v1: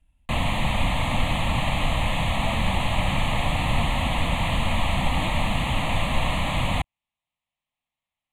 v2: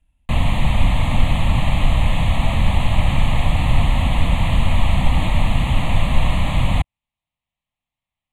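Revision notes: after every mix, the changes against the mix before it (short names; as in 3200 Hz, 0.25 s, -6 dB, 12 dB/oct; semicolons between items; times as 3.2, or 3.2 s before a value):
background: add low shelf 180 Hz +10.5 dB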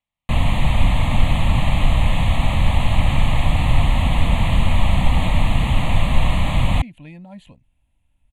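speech: entry +1.85 s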